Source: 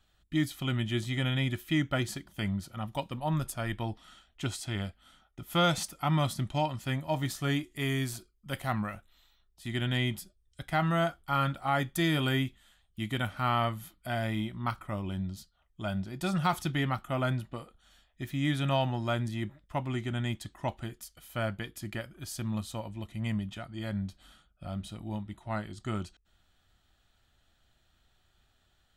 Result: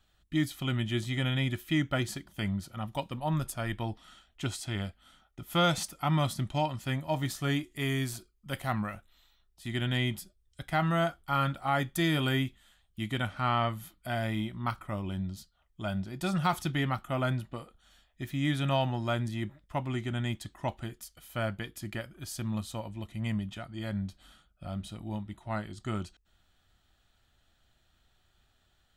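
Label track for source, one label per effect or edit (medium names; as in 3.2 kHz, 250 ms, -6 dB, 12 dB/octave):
13.070000	13.680000	low-pass 12 kHz -> 6 kHz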